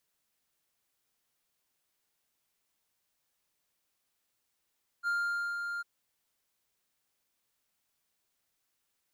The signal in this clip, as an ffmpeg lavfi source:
-f lavfi -i "aevalsrc='0.0531*(1-4*abs(mod(1400*t+0.25,1)-0.5))':d=0.8:s=44100,afade=t=in:d=0.044,afade=t=out:st=0.044:d=0.493:silence=0.501,afade=t=out:st=0.78:d=0.02"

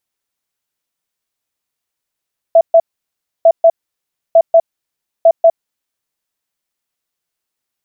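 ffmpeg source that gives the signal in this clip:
-f lavfi -i "aevalsrc='0.708*sin(2*PI*663*t)*clip(min(mod(mod(t,0.9),0.19),0.06-mod(mod(t,0.9),0.19))/0.005,0,1)*lt(mod(t,0.9),0.38)':d=3.6:s=44100"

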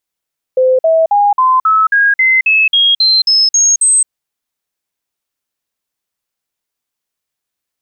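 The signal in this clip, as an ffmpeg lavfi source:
-f lavfi -i "aevalsrc='0.473*clip(min(mod(t,0.27),0.22-mod(t,0.27))/0.005,0,1)*sin(2*PI*515*pow(2,floor(t/0.27)/3)*mod(t,0.27))':d=3.51:s=44100"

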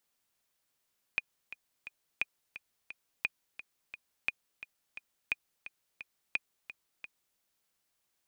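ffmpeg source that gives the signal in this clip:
-f lavfi -i "aevalsrc='pow(10,(-16-14*gte(mod(t,3*60/174),60/174))/20)*sin(2*PI*2460*mod(t,60/174))*exp(-6.91*mod(t,60/174)/0.03)':d=6.2:s=44100"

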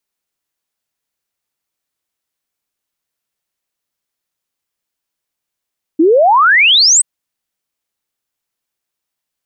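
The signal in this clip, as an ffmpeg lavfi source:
-f lavfi -i "aevalsrc='0.531*clip(min(t,1.03-t)/0.01,0,1)*sin(2*PI*300*1.03/log(8500/300)*(exp(log(8500/300)*t/1.03)-1))':d=1.03:s=44100"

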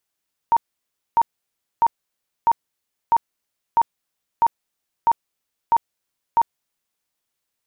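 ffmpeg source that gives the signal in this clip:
-f lavfi -i "aevalsrc='0.266*sin(2*PI*926*mod(t,0.65))*lt(mod(t,0.65),43/926)':d=6.5:s=44100"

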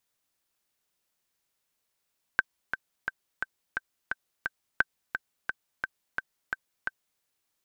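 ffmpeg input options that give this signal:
-f lavfi -i "aevalsrc='pow(10,(-8-8*gte(mod(t,7*60/174),60/174))/20)*sin(2*PI*1550*mod(t,60/174))*exp(-6.91*mod(t,60/174)/0.03)':d=4.82:s=44100"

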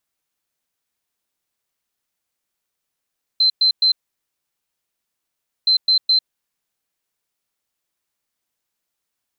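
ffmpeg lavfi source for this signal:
-f lavfi -i "aevalsrc='0.266*sin(2*PI*4090*t)*clip(min(mod(mod(t,2.27),0.21),0.1-mod(mod(t,2.27),0.21))/0.005,0,1)*lt(mod(t,2.27),0.63)':d=4.54:s=44100"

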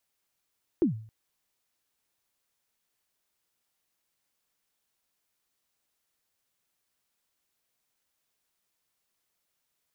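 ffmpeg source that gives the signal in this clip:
-f lavfi -i "aevalsrc='0.141*pow(10,-3*t/0.49)*sin(2*PI*(380*0.118/log(110/380)*(exp(log(110/380)*min(t,0.118)/0.118)-1)+110*max(t-0.118,0)))':d=0.27:s=44100"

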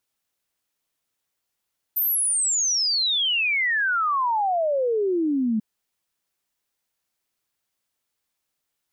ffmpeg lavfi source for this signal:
-f lavfi -i "aevalsrc='0.106*clip(min(t,3.64-t)/0.01,0,1)*sin(2*PI*14000*3.64/log(210/14000)*(exp(log(210/14000)*t/3.64)-1))':d=3.64:s=44100"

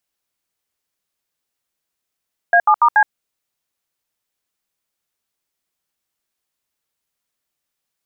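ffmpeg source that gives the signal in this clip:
-f lavfi -i "aevalsrc='0.282*clip(min(mod(t,0.143),0.07-mod(t,0.143))/0.002,0,1)*(eq(floor(t/0.143),0)*(sin(2*PI*697*mod(t,0.143))+sin(2*PI*1633*mod(t,0.143)))+eq(floor(t/0.143),1)*(sin(2*PI*852*mod(t,0.143))+sin(2*PI*1209*mod(t,0.143)))+eq(floor(t/0.143),2)*(sin(2*PI*941*mod(t,0.143))+sin(2*PI*1209*mod(t,0.143)))+eq(floor(t/0.143),3)*(sin(2*PI*852*mod(t,0.143))+sin(2*PI*1633*mod(t,0.143))))':d=0.572:s=44100"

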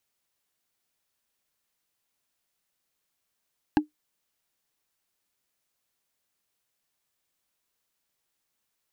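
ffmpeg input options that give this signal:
-f lavfi -i "aevalsrc='0.224*pow(10,-3*t/0.13)*sin(2*PI*302*t)+0.141*pow(10,-3*t/0.038)*sin(2*PI*832.6*t)+0.0891*pow(10,-3*t/0.017)*sin(2*PI*1632*t)+0.0562*pow(10,-3*t/0.009)*sin(2*PI*2697.8*t)+0.0355*pow(10,-3*t/0.006)*sin(2*PI*4028.7*t)':d=0.45:s=44100"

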